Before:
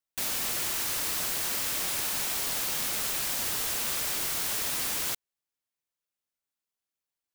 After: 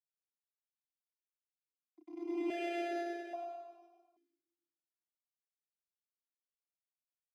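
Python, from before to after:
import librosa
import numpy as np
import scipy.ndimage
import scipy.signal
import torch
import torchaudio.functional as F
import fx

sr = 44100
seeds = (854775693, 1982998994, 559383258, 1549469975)

p1 = fx.doppler_pass(x, sr, speed_mps=25, closest_m=1.5, pass_at_s=2.54)
p2 = fx.peak_eq(p1, sr, hz=700.0, db=8.0, octaves=1.1)
p3 = fx.rider(p2, sr, range_db=4, speed_s=0.5)
p4 = p2 + F.gain(torch.from_numpy(p3), 1.5).numpy()
p5 = fx.tremolo_shape(p4, sr, shape='saw_down', hz=9.7, depth_pct=45)
p6 = fx.schmitt(p5, sr, flips_db=-32.0)
p7 = fx.vocoder(p6, sr, bands=16, carrier='saw', carrier_hz=344.0)
p8 = fx.doubler(p7, sr, ms=32.0, db=-3.0)
p9 = p8 + fx.echo_single(p8, sr, ms=507, db=-17.0, dry=0)
p10 = fx.rev_plate(p9, sr, seeds[0], rt60_s=1.3, hf_ratio=0.9, predelay_ms=100, drr_db=-5.5)
p11 = np.repeat(p10[::8], 8)[:len(p10)]
p12 = fx.vowel_held(p11, sr, hz=1.2)
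y = F.gain(torch.from_numpy(p12), 10.5).numpy()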